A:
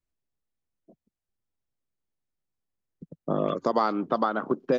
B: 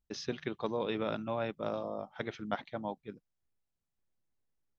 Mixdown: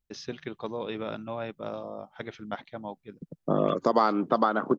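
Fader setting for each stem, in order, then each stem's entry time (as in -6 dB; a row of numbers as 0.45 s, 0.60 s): +1.5 dB, 0.0 dB; 0.20 s, 0.00 s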